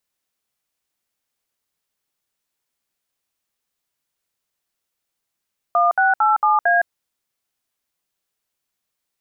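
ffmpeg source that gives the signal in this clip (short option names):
-f lavfi -i "aevalsrc='0.168*clip(min(mod(t,0.226),0.162-mod(t,0.226))/0.002,0,1)*(eq(floor(t/0.226),0)*(sin(2*PI*697*mod(t,0.226))+sin(2*PI*1209*mod(t,0.226)))+eq(floor(t/0.226),1)*(sin(2*PI*770*mod(t,0.226))+sin(2*PI*1477*mod(t,0.226)))+eq(floor(t/0.226),2)*(sin(2*PI*852*mod(t,0.226))+sin(2*PI*1336*mod(t,0.226)))+eq(floor(t/0.226),3)*(sin(2*PI*852*mod(t,0.226))+sin(2*PI*1209*mod(t,0.226)))+eq(floor(t/0.226),4)*(sin(2*PI*697*mod(t,0.226))+sin(2*PI*1633*mod(t,0.226))))':d=1.13:s=44100"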